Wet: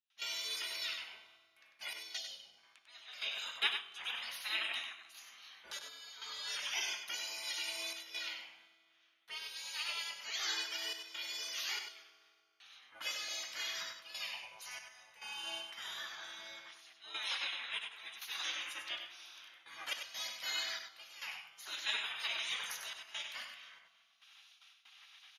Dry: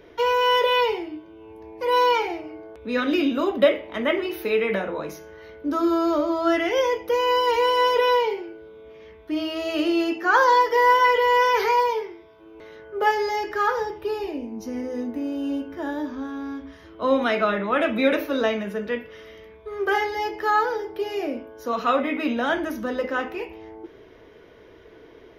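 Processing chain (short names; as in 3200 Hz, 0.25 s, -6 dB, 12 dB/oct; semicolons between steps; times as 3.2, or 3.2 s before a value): de-hum 127.7 Hz, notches 3; spectral gate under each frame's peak -25 dB weak; weighting filter ITU-R 468; spectral gain 2.18–2.58, 890–2900 Hz -18 dB; gate with hold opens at -48 dBFS; bell 5400 Hz -7 dB 0.55 oct; vocal rider within 4 dB 2 s; step gate ".xxxxxxxx.xxx." 70 bpm -12 dB; echo 97 ms -7 dB; reverb RT60 2.4 s, pre-delay 3 ms, DRR 15 dB; gain -5.5 dB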